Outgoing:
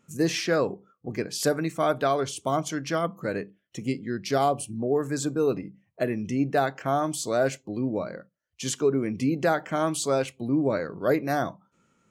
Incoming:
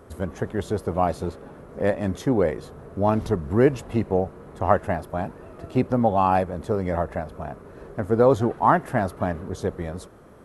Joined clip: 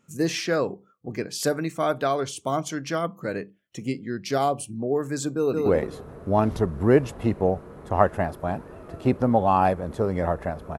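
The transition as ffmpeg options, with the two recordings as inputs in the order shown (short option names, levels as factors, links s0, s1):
-filter_complex "[0:a]apad=whole_dur=10.78,atrim=end=10.78,atrim=end=5.662[s0];[1:a]atrim=start=2.358:end=7.48[s1];[s0][s1]acrossfade=d=0.004:c1=hsin:c2=hsin,asplit=2[s2][s3];[s3]afade=t=in:st=5.36:d=0.01,afade=t=out:st=5.66:d=0.01,aecho=0:1:170|340|510|680:0.749894|0.224968|0.0674905|0.0202471[s4];[s2][s4]amix=inputs=2:normalize=0"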